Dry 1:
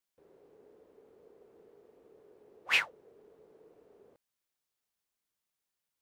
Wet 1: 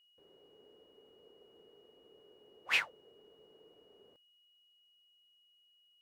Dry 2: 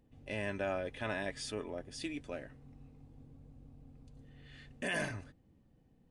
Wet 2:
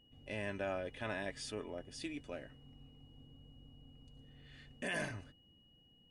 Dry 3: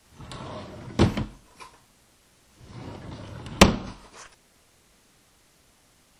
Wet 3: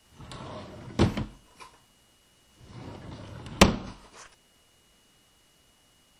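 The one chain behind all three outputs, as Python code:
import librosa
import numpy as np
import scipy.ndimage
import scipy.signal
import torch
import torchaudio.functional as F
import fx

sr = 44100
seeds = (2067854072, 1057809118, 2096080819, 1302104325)

y = x + 10.0 ** (-64.0 / 20.0) * np.sin(2.0 * np.pi * 2900.0 * np.arange(len(x)) / sr)
y = F.gain(torch.from_numpy(y), -3.0).numpy()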